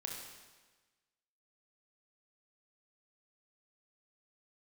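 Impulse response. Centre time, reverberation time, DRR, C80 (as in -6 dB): 61 ms, 1.3 s, -0.5 dB, 4.5 dB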